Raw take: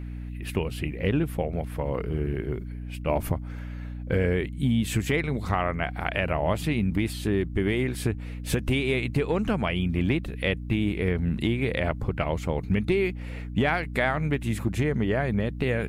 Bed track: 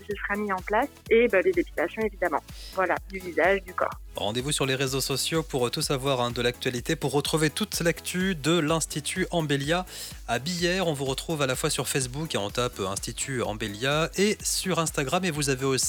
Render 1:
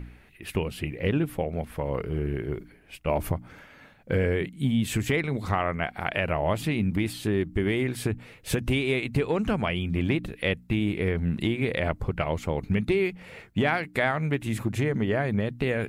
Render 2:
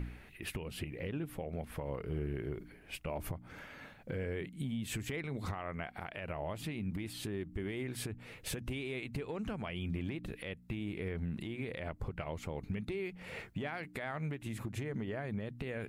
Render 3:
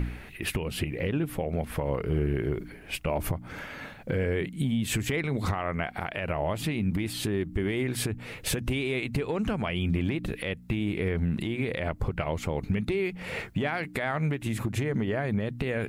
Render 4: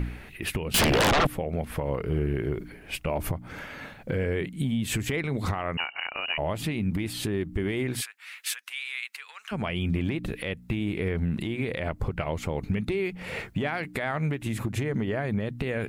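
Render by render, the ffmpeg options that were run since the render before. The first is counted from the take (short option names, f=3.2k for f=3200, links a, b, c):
-af "bandreject=f=60:t=h:w=4,bandreject=f=120:t=h:w=4,bandreject=f=180:t=h:w=4,bandreject=f=240:t=h:w=4,bandreject=f=300:t=h:w=4"
-af "acompressor=threshold=-31dB:ratio=2.5,alimiter=level_in=5dB:limit=-24dB:level=0:latency=1:release=344,volume=-5dB"
-af "volume=10.5dB"
-filter_complex "[0:a]asettb=1/sr,asplit=3[a][b][c];[a]atrim=end=0.744[d];[b]atrim=start=0.74:end=1.27,asetpts=PTS-STARTPTS,afade=t=in:d=0.004:c=qsin,afade=t=out:st=0.526:d=0.004:c=qsin,aeval=exprs='0.126*sin(PI/2*6.31*val(0)/0.126)':c=same[e];[c]atrim=start=1.266[f];[d][e]acrossfade=d=0.004:c1=hsin:c2=qsin[g];[g][f]acrossfade=d=0.004:c1=qsin:c2=hsin,asettb=1/sr,asplit=3[h][i][j];[h]atrim=end=5.774[k];[i]atrim=start=5.77:end=6.38,asetpts=PTS-STARTPTS,afade=t=in:d=0.004:c=qsin,afade=t=out:st=0.606:d=0.004:c=qsin,lowpass=f=2.6k:t=q:w=0.5098,lowpass=f=2.6k:t=q:w=0.6013,lowpass=f=2.6k:t=q:w=0.9,lowpass=f=2.6k:t=q:w=2.563,afreqshift=-3000[l];[j]atrim=start=6.376[m];[k][l]acrossfade=d=0.004:c1=hsin:c2=qsin[n];[n][m]acrossfade=d=0.004:c1=qsin:c2=hsin,asplit=3[o][p][q];[o]afade=t=out:st=8:d=0.02[r];[p]highpass=f=1.3k:w=0.5412,highpass=f=1.3k:w=1.3066,afade=t=in:st=8:d=0.02,afade=t=out:st=9.51:d=0.02[s];[q]afade=t=in:st=9.51:d=0.02[t];[r][s][t]amix=inputs=3:normalize=0"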